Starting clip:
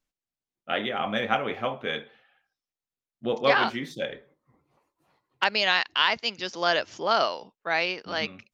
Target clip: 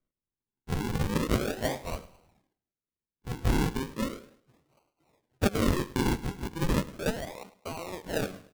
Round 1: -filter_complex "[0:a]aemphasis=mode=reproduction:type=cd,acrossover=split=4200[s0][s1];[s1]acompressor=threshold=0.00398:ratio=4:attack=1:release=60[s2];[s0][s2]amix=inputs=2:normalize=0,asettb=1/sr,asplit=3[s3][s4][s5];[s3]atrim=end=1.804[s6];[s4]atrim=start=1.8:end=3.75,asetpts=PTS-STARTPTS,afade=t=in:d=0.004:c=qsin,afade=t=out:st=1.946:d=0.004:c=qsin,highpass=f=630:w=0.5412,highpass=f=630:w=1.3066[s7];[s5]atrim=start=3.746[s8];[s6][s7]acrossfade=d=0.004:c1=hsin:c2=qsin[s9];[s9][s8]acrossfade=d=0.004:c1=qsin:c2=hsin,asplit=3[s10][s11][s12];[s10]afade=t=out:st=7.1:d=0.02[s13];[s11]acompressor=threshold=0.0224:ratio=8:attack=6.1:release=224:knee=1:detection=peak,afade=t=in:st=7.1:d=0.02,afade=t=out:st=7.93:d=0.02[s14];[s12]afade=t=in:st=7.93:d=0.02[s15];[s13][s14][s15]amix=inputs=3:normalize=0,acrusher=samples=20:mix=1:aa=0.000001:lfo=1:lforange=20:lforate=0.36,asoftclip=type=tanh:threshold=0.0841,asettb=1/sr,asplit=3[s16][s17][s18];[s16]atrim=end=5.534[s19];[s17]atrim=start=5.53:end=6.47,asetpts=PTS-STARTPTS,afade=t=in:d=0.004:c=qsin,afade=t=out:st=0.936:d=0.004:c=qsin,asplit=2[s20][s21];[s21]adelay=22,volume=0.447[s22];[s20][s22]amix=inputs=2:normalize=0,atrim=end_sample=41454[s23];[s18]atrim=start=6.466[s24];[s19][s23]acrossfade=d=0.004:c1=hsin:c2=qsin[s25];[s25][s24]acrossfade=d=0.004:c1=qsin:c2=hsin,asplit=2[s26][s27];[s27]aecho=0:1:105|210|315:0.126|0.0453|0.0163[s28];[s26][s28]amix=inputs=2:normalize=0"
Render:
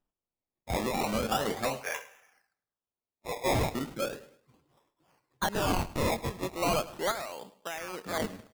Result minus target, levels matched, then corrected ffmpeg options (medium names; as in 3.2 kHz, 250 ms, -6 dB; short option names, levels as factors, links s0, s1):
decimation with a swept rate: distortion -24 dB; saturation: distortion +8 dB
-filter_complex "[0:a]aemphasis=mode=reproduction:type=cd,acrossover=split=4200[s0][s1];[s1]acompressor=threshold=0.00398:ratio=4:attack=1:release=60[s2];[s0][s2]amix=inputs=2:normalize=0,asettb=1/sr,asplit=3[s3][s4][s5];[s3]atrim=end=1.804[s6];[s4]atrim=start=1.8:end=3.75,asetpts=PTS-STARTPTS,afade=t=in:d=0.004:c=qsin,afade=t=out:st=1.946:d=0.004:c=qsin,highpass=f=630:w=0.5412,highpass=f=630:w=1.3066[s7];[s5]atrim=start=3.746[s8];[s6][s7]acrossfade=d=0.004:c1=hsin:c2=qsin[s9];[s9][s8]acrossfade=d=0.004:c1=qsin:c2=hsin,asplit=3[s10][s11][s12];[s10]afade=t=out:st=7.1:d=0.02[s13];[s11]acompressor=threshold=0.0224:ratio=8:attack=6.1:release=224:knee=1:detection=peak,afade=t=in:st=7.1:d=0.02,afade=t=out:st=7.93:d=0.02[s14];[s12]afade=t=in:st=7.93:d=0.02[s15];[s13][s14][s15]amix=inputs=3:normalize=0,acrusher=samples=49:mix=1:aa=0.000001:lfo=1:lforange=49:lforate=0.36,asoftclip=type=tanh:threshold=0.237,asettb=1/sr,asplit=3[s16][s17][s18];[s16]atrim=end=5.534[s19];[s17]atrim=start=5.53:end=6.47,asetpts=PTS-STARTPTS,afade=t=in:d=0.004:c=qsin,afade=t=out:st=0.936:d=0.004:c=qsin,asplit=2[s20][s21];[s21]adelay=22,volume=0.447[s22];[s20][s22]amix=inputs=2:normalize=0,atrim=end_sample=41454[s23];[s18]atrim=start=6.466[s24];[s19][s23]acrossfade=d=0.004:c1=hsin:c2=qsin[s25];[s25][s24]acrossfade=d=0.004:c1=qsin:c2=hsin,asplit=2[s26][s27];[s27]aecho=0:1:105|210|315:0.126|0.0453|0.0163[s28];[s26][s28]amix=inputs=2:normalize=0"